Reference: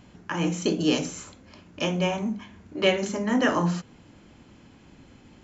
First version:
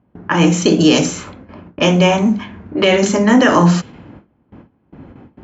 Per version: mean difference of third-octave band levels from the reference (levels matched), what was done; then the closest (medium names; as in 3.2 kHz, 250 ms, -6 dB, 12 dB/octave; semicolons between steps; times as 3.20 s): 3.5 dB: gate with hold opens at -41 dBFS; level-controlled noise filter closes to 1.1 kHz, open at -22.5 dBFS; high-pass 55 Hz; loudness maximiser +15.5 dB; trim -1 dB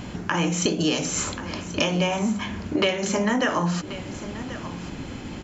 8.5 dB: dynamic bell 270 Hz, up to -5 dB, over -35 dBFS, Q 0.74; compression 12:1, threshold -36 dBFS, peak gain reduction 19 dB; delay 1084 ms -14.5 dB; loudness maximiser +24 dB; trim -7.5 dB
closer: first